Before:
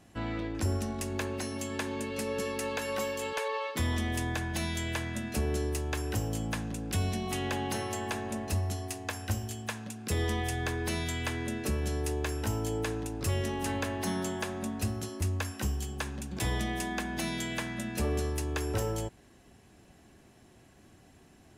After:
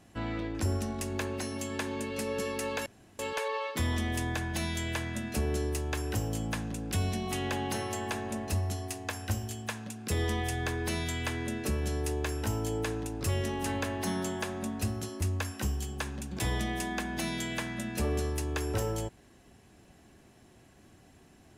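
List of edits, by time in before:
2.86–3.19 room tone

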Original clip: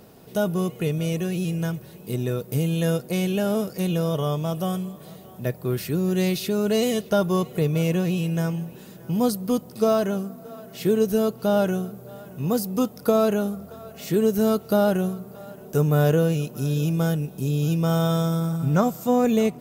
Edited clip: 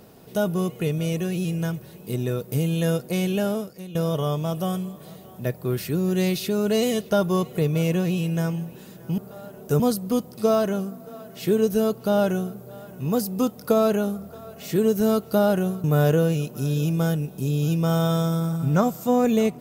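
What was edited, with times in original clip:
3.45–3.95 fade out quadratic, to -14.5 dB
15.22–15.84 move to 9.18

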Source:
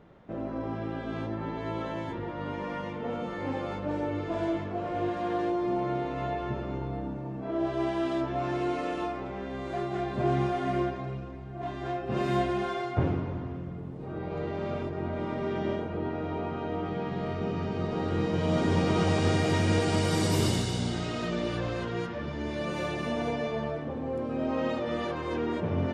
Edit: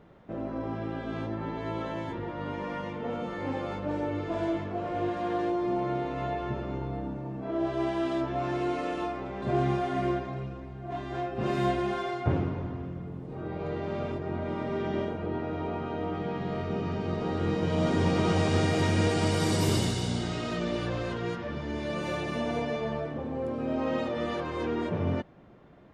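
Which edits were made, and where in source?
9.42–10.13 cut

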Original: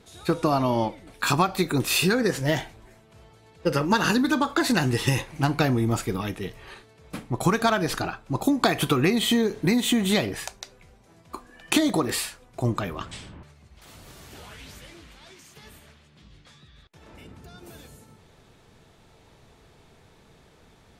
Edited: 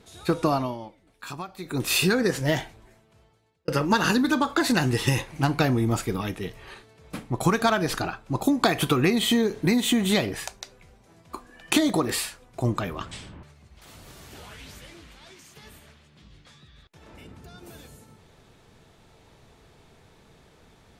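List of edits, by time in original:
0.49–1.9 dip -14.5 dB, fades 0.29 s
2.54–3.68 fade out

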